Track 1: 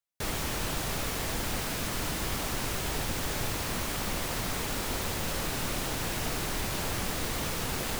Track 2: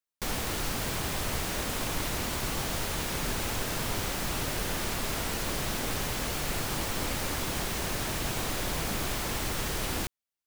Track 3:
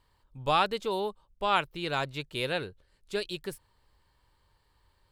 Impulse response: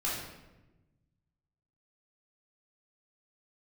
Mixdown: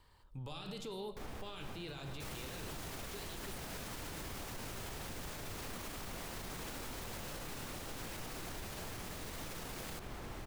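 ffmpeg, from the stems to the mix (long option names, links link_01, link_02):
-filter_complex "[0:a]adelay=2000,volume=-9dB[link_01];[1:a]highshelf=frequency=2700:gain=-11.5,adelay=950,volume=-12.5dB,asplit=2[link_02][link_03];[link_03]volume=-16.5dB[link_04];[2:a]acrossover=split=320|3000[link_05][link_06][link_07];[link_06]acompressor=threshold=-39dB:ratio=6[link_08];[link_05][link_08][link_07]amix=inputs=3:normalize=0,volume=2.5dB,asplit=2[link_09][link_10];[link_10]volume=-22.5dB[link_11];[link_02][link_09]amix=inputs=2:normalize=0,alimiter=level_in=14.5dB:limit=-24dB:level=0:latency=1:release=31,volume=-14.5dB,volume=0dB[link_12];[3:a]atrim=start_sample=2205[link_13];[link_04][link_11]amix=inputs=2:normalize=0[link_14];[link_14][link_13]afir=irnorm=-1:irlink=0[link_15];[link_01][link_12][link_15]amix=inputs=3:normalize=0,alimiter=level_in=11dB:limit=-24dB:level=0:latency=1:release=57,volume=-11dB"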